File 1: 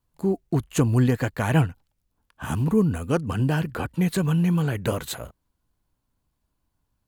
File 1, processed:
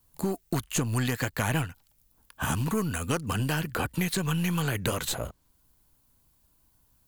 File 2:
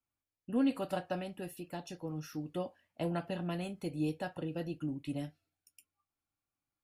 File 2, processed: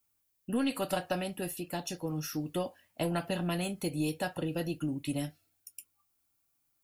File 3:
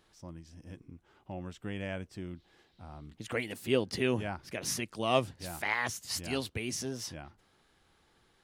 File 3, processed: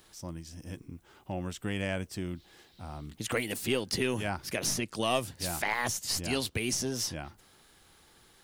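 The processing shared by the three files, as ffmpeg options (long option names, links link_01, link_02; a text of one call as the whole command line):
ffmpeg -i in.wav -filter_complex "[0:a]aemphasis=mode=production:type=50kf,aeval=exprs='0.562*(cos(1*acos(clip(val(0)/0.562,-1,1)))-cos(1*PI/2))+0.0178*(cos(8*acos(clip(val(0)/0.562,-1,1)))-cos(8*PI/2))':channel_layout=same,acrossover=split=1000|7900[link_01][link_02][link_03];[link_01]acompressor=threshold=-34dB:ratio=4[link_04];[link_02]acompressor=threshold=-37dB:ratio=4[link_05];[link_03]acompressor=threshold=-49dB:ratio=4[link_06];[link_04][link_05][link_06]amix=inputs=3:normalize=0,volume=5.5dB" out.wav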